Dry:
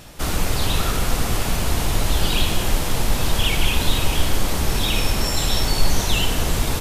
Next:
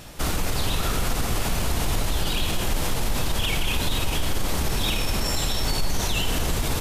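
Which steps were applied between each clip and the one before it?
limiter -14.5 dBFS, peak gain reduction 10 dB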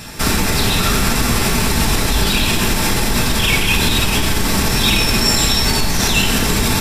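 reverb RT60 0.65 s, pre-delay 3 ms, DRR 1.5 dB; gain +9 dB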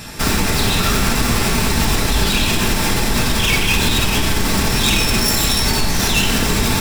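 self-modulated delay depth 0.076 ms

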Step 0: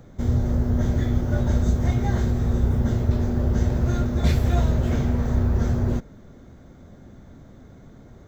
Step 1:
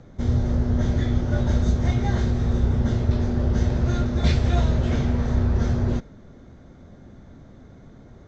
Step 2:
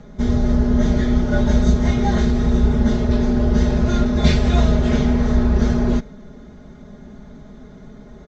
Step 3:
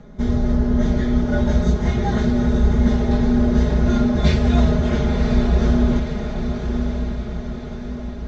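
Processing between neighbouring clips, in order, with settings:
LPF 6400 Hz 24 dB/oct; dynamic EQ 3800 Hz, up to +4 dB, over -50 dBFS, Q 0.71
comb 4.8 ms, depth 99%; gain +3.5 dB
high shelf 5300 Hz -6 dB; diffused feedback echo 1.046 s, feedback 54%, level -6 dB; gain -1.5 dB

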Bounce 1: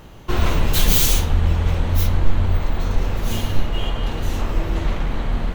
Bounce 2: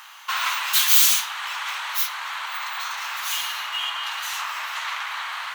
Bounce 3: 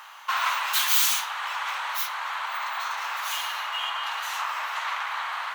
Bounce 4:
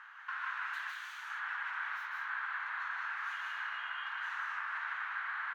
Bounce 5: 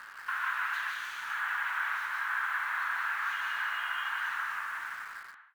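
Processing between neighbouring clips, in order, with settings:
steep high-pass 1000 Hz 36 dB/oct; in parallel at +1 dB: compressor, threshold -35 dBFS, peak gain reduction 19 dB; on the sum: gain +2 dB
tilt shelf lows +6.5 dB, about 1400 Hz
compressor 6:1, threshold -30 dBFS, peak gain reduction 12.5 dB; band-pass 1600 Hz, Q 5; loudspeakers at several distances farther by 53 m -4 dB, 65 m -5 dB
ending faded out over 1.41 s; reverb, pre-delay 3 ms, DRR 15.5 dB; in parallel at -9 dB: requantised 8-bit, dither none; on the sum: gain +3.5 dB

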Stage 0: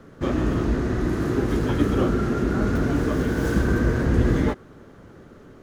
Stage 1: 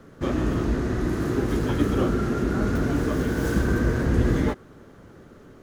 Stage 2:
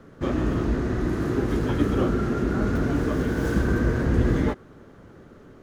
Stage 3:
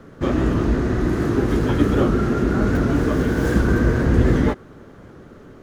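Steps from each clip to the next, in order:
high shelf 6600 Hz +4.5 dB; gain -1.5 dB
high shelf 5300 Hz -6.5 dB
record warp 78 rpm, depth 100 cents; gain +5 dB

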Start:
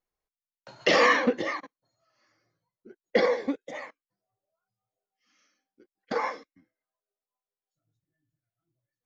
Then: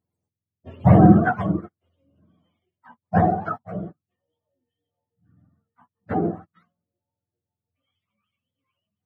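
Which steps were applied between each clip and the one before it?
spectrum mirrored in octaves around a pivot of 600 Hz; gain +7 dB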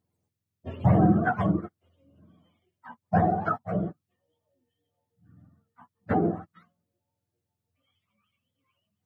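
compressor 2.5:1, threshold -26 dBFS, peak gain reduction 13 dB; gain +3.5 dB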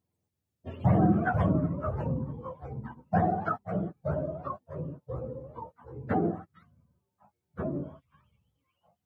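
echoes that change speed 0.33 s, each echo -3 st, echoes 2, each echo -6 dB; gain -3 dB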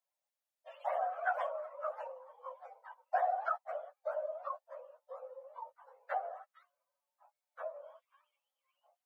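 steep high-pass 530 Hz 96 dB/oct; gain -3.5 dB

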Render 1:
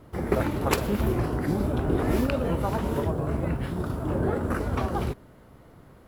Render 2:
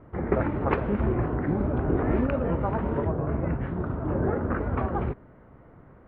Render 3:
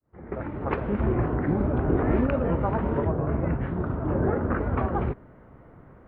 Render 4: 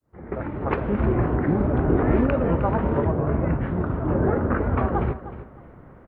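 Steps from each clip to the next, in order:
LPF 2100 Hz 24 dB/oct
opening faded in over 1.17 s; gain +1.5 dB
feedback echo 0.309 s, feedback 23%, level -13.5 dB; gain +3 dB

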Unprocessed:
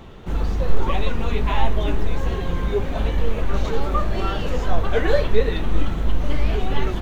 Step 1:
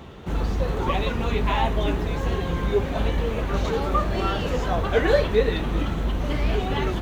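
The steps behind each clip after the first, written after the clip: HPF 52 Hz; gain +1 dB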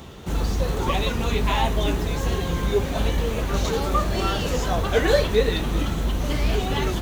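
tone controls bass +1 dB, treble +12 dB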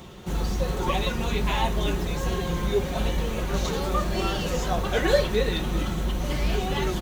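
comb 5.5 ms, depth 39%; gain -3 dB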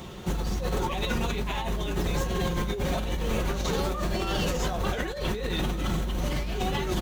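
negative-ratio compressor -28 dBFS, ratio -1

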